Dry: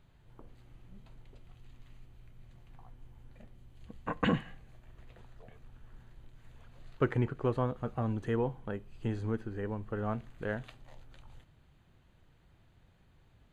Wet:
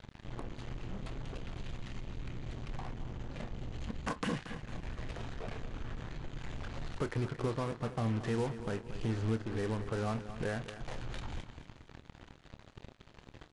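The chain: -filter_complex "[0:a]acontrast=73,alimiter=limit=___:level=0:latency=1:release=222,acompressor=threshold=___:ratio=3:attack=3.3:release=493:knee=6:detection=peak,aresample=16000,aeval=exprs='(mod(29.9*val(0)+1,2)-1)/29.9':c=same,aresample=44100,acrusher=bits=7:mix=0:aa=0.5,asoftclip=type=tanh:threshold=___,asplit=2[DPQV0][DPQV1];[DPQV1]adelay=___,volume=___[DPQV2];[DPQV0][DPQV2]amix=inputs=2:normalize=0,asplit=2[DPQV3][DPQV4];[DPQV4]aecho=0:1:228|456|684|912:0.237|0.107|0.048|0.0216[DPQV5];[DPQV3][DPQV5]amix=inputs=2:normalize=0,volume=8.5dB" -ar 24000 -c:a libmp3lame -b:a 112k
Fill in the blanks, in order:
-13.5dB, -42dB, -33dB, 27, -12dB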